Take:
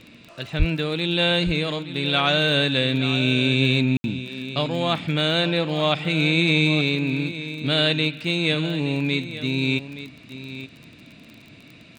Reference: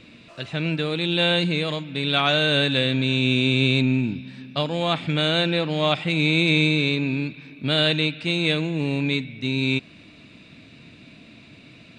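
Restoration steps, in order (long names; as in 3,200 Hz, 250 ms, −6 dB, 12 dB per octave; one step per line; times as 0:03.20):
click removal
0:00.58–0:00.70: high-pass filter 140 Hz 24 dB per octave
ambience match 0:03.97–0:04.04
echo removal 871 ms −13 dB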